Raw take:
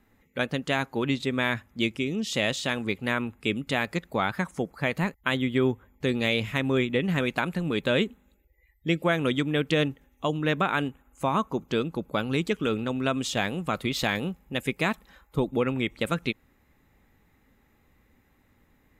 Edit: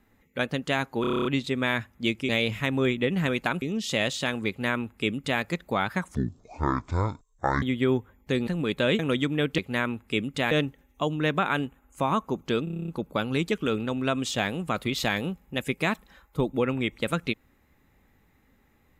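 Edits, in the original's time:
1.01 stutter 0.03 s, 9 plays
2.91–3.84 copy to 9.74
4.58–5.36 speed 53%
6.21–7.54 move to 2.05
8.06–9.15 cut
11.87 stutter 0.03 s, 9 plays

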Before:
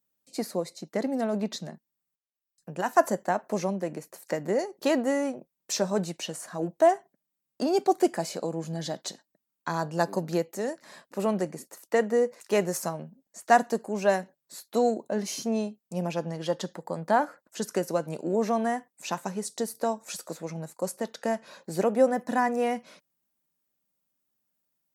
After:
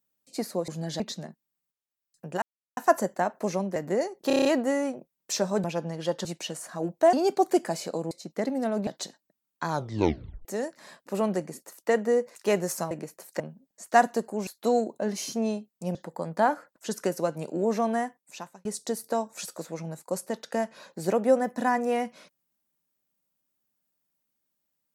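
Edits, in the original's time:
0.68–1.44 swap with 8.6–8.92
2.86 insert silence 0.35 s
3.85–4.34 move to 12.96
4.85 stutter 0.03 s, 7 plays
6.92–7.62 cut
9.74 tape stop 0.76 s
14.03–14.57 cut
16.05–16.66 move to 6.04
18.71–19.36 fade out

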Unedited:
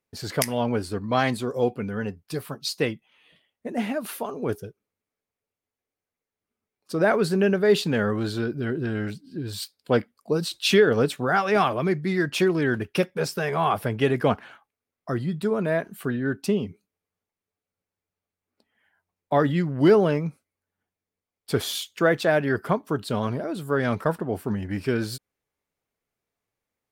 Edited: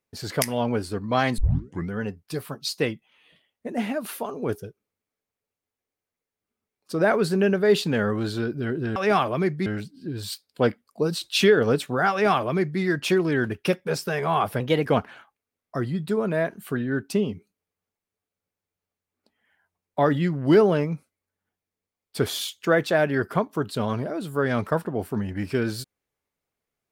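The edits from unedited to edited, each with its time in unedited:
1.38 tape start 0.53 s
11.41–12.11 copy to 8.96
13.9–14.19 speed 115%

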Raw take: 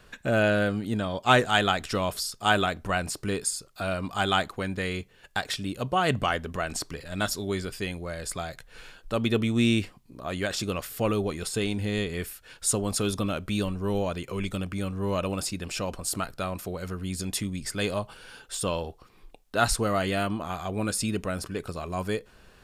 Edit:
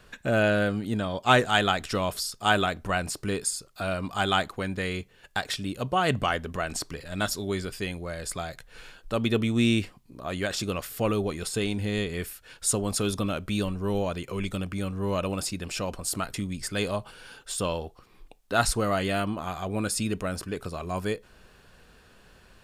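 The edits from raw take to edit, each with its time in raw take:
16.34–17.37 cut

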